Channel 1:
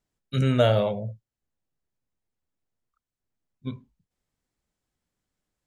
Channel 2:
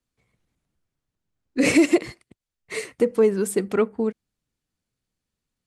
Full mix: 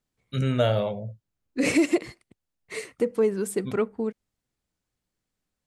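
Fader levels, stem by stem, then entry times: -2.5, -4.5 dB; 0.00, 0.00 s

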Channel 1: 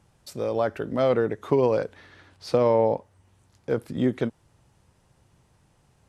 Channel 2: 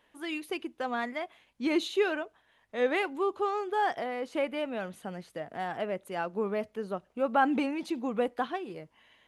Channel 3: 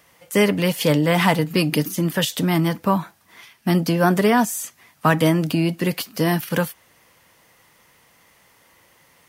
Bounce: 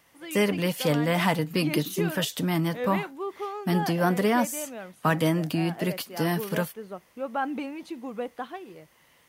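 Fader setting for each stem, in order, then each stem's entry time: off, -4.0 dB, -6.5 dB; off, 0.00 s, 0.00 s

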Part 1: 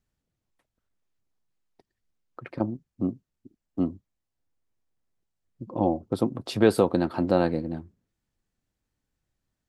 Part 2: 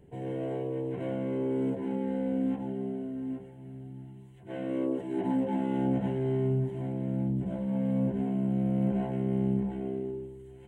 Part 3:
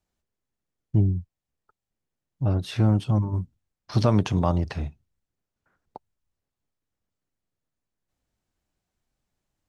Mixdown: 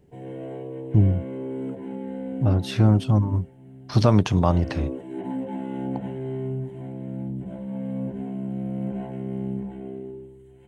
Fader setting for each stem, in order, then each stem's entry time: off, -1.5 dB, +3.0 dB; off, 0.00 s, 0.00 s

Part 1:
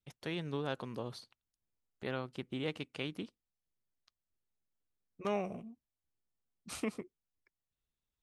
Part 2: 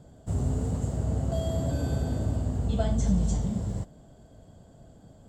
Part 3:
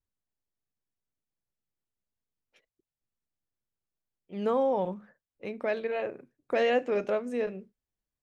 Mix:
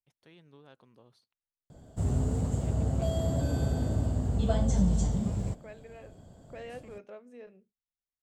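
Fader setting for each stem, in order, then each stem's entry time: -18.0, -0.5, -18.0 dB; 0.00, 1.70, 0.00 s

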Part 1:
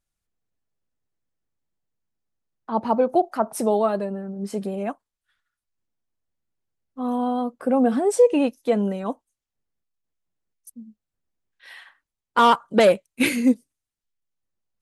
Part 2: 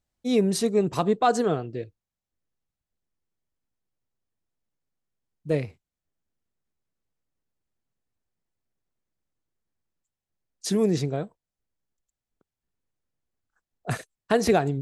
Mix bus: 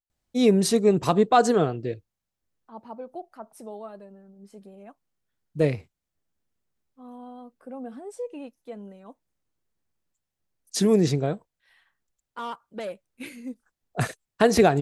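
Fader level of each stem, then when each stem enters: -18.5, +3.0 dB; 0.00, 0.10 s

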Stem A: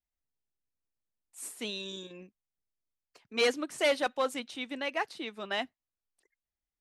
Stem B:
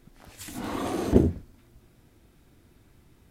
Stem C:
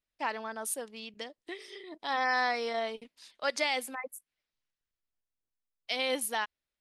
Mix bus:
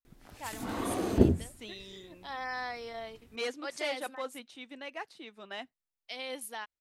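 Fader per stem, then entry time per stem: -8.5, -3.0, -8.5 dB; 0.00, 0.05, 0.20 s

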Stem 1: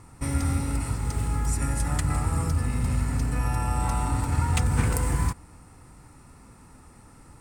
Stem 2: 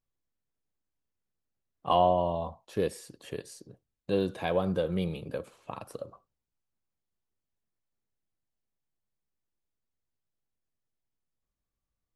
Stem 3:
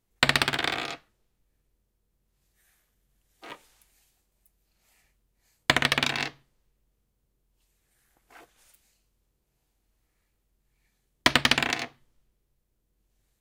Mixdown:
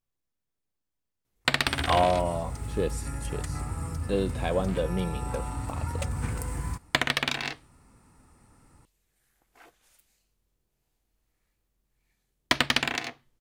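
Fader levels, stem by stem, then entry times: -8.0, +0.5, -3.0 dB; 1.45, 0.00, 1.25 s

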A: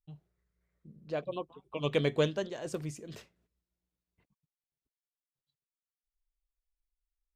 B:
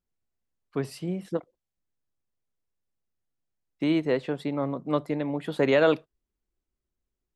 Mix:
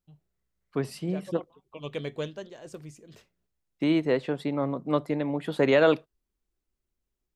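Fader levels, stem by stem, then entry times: -5.5, +0.5 dB; 0.00, 0.00 s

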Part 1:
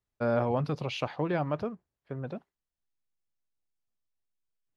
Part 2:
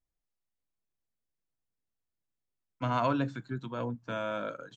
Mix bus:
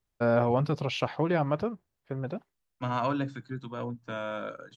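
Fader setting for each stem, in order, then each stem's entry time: +3.0, -0.5 dB; 0.00, 0.00 s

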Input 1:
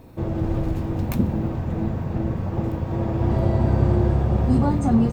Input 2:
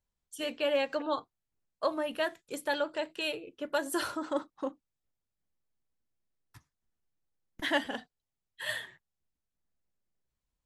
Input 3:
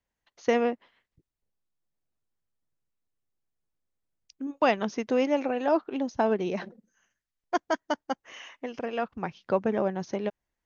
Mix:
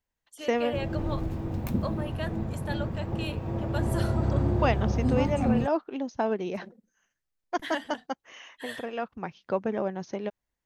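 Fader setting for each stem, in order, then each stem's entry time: -7.0, -5.0, -2.5 dB; 0.55, 0.00, 0.00 s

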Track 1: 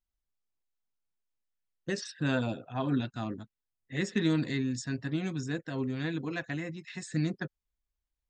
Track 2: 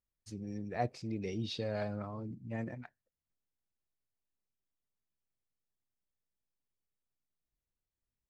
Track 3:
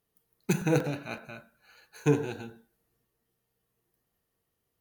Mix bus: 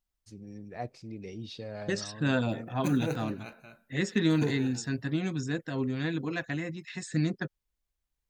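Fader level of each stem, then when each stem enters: +2.0, -3.5, -7.5 dB; 0.00, 0.00, 2.35 s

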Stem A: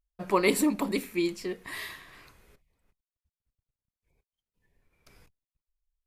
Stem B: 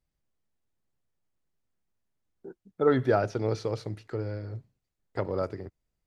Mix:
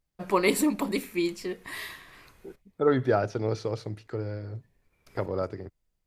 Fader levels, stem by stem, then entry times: +0.5, 0.0 dB; 0.00, 0.00 s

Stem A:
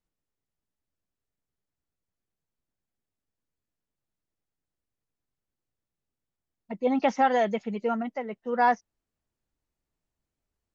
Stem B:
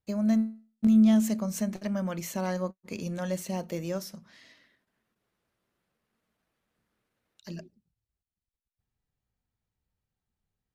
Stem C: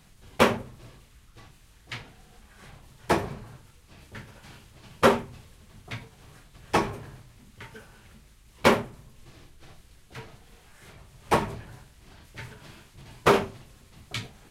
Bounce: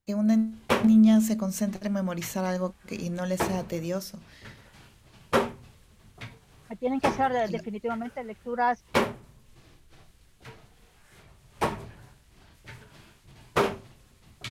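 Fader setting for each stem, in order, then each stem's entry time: -3.0, +2.0, -4.5 dB; 0.00, 0.00, 0.30 s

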